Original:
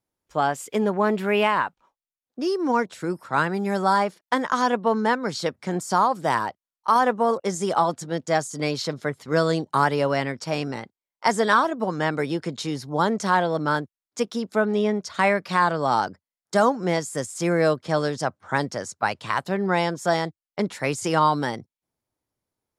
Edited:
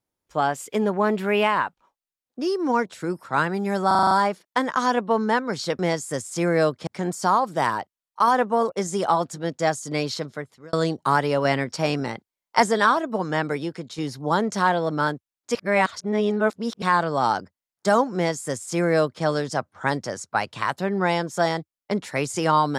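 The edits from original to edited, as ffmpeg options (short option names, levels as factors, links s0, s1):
-filter_complex "[0:a]asplit=15[s0][s1][s2][s3][s4][s5][s6][s7][s8][s9][s10][s11][s12][s13][s14];[s0]atrim=end=3.912[s15];[s1]atrim=start=3.868:end=3.912[s16];[s2]atrim=start=3.868:end=3.912[s17];[s3]atrim=start=3.868:end=3.912[s18];[s4]atrim=start=3.868:end=3.912[s19];[s5]atrim=start=3.868:end=3.912[s20];[s6]atrim=start=3.868:end=5.552[s21];[s7]atrim=start=16.828:end=17.912[s22];[s8]atrim=start=5.548:end=9.41,asetpts=PTS-STARTPTS,afade=t=out:st=3.222:d=0.64[s23];[s9]atrim=start=9.41:end=10.132,asetpts=PTS-STARTPTS,afade=t=in:d=0.004:c=hsin[s24];[s10]atrim=start=10.128:end=11.342,asetpts=PTS-STARTPTS,volume=1.41[s25];[s11]atrim=start=11.338:end=12.66,asetpts=PTS-STARTPTS,afade=t=out:st=0.752:d=0.57:silence=0.398107[s26];[s12]atrim=start=12.66:end=14.232,asetpts=PTS-STARTPTS,afade=t=in:d=0.004:c=hsin:silence=0.398107[s27];[s13]atrim=start=14.228:end=15.502,asetpts=PTS-STARTPTS,areverse[s28];[s14]atrim=start=15.498[s29];[s15][s16]acrossfade=d=0.004:c1=hsin:c2=hsin[s30];[s30][s17]acrossfade=d=0.004:c1=hsin:c2=hsin[s31];[s31][s18]acrossfade=d=0.004:c1=hsin:c2=hsin[s32];[s32][s19]acrossfade=d=0.004:c1=hsin:c2=hsin[s33];[s33][s20]acrossfade=d=0.004:c1=hsin:c2=hsin[s34];[s34][s21]acrossfade=d=0.004:c1=hsin:c2=hsin[s35];[s35][s22]acrossfade=d=0.004:c1=hsin:c2=hsin[s36];[s23][s24]concat=n=2:v=0:a=1[s37];[s36][s37]acrossfade=d=0.004:c1=hsin:c2=hsin[s38];[s38][s25]acrossfade=d=0.004:c1=hsin:c2=hsin[s39];[s26][s27]concat=n=2:v=0:a=1[s40];[s39][s40]acrossfade=d=0.004:c1=hsin:c2=hsin[s41];[s41][s28]acrossfade=d=0.004:c1=hsin:c2=hsin[s42];[s42][s29]acrossfade=d=0.004:c1=hsin:c2=hsin"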